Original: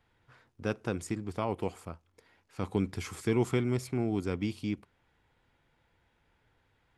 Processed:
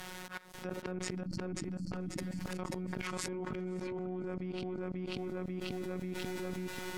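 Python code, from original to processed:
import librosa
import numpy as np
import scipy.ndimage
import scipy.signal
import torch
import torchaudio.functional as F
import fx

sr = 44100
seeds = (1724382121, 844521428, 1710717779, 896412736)

p1 = fx.law_mismatch(x, sr, coded='A')
p2 = fx.robotise(p1, sr, hz=183.0)
p3 = fx.env_lowpass_down(p2, sr, base_hz=1500.0, full_db=-33.0)
p4 = fx.low_shelf(p3, sr, hz=110.0, db=-5.0)
p5 = fx.level_steps(p4, sr, step_db=24)
p6 = fx.auto_swell(p5, sr, attack_ms=621.0)
p7 = fx.spec_erase(p6, sr, start_s=1.16, length_s=0.76, low_hz=330.0, high_hz=4100.0)
p8 = p7 + fx.echo_feedback(p7, sr, ms=539, feedback_pct=37, wet_db=-3.5, dry=0)
p9 = fx.env_flatten(p8, sr, amount_pct=100)
y = p9 * librosa.db_to_amplitude(10.0)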